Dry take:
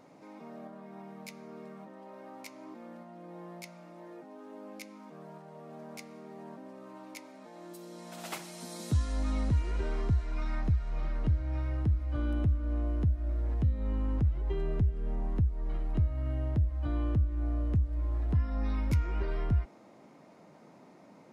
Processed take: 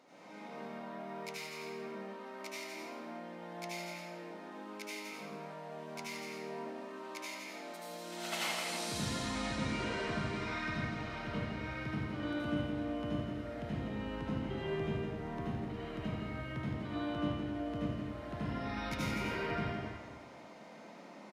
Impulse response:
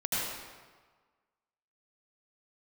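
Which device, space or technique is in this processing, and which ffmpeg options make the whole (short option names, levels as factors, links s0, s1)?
stadium PA: -filter_complex "[0:a]highpass=220,equalizer=f=3300:t=o:w=2.2:g=8,aecho=1:1:166.2|253.6:0.447|0.282[s0];[1:a]atrim=start_sample=2205[s1];[s0][s1]afir=irnorm=-1:irlink=0,volume=0.473"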